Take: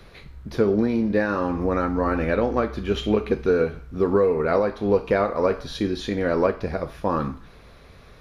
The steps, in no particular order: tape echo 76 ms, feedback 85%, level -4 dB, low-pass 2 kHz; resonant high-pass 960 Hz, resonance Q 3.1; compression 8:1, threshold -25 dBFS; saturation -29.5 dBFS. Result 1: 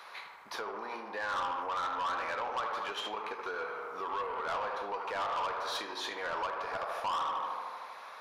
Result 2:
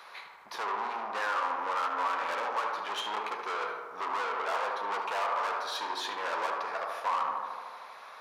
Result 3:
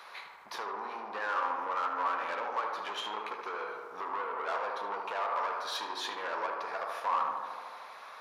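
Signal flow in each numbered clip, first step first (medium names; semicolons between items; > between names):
tape echo > compression > resonant high-pass > saturation; saturation > tape echo > resonant high-pass > compression; compression > saturation > resonant high-pass > tape echo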